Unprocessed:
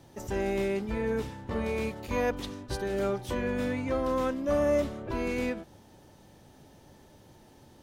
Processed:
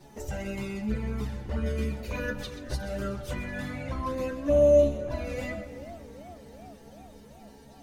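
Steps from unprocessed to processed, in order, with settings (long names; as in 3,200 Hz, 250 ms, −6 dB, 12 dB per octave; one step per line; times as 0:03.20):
low-shelf EQ 180 Hz +4 dB
notch filter 3,300 Hz, Q 24
in parallel at +0.5 dB: downward compressor 6 to 1, threshold −40 dBFS, peak gain reduction 17 dB
on the sum: stiff-string resonator 69 Hz, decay 0.32 s, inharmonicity 0.002
flanger swept by the level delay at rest 5.5 ms, full sweep at −29 dBFS
on a send: echo with a time of its own for lows and highs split 340 Hz, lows 443 ms, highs 129 ms, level −13 dB
on the sum: feedback echo with a swinging delay time 383 ms, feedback 72%, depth 106 cents, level −21 dB
level +8 dB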